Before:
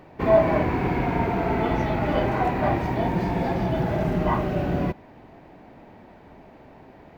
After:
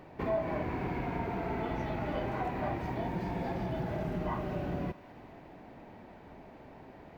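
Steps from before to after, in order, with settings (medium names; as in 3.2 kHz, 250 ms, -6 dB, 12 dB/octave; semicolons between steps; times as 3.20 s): compression 2:1, threshold -34 dBFS, peak gain reduction 12 dB; thinning echo 209 ms, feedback 69%, high-pass 830 Hz, level -14 dB; trim -3.5 dB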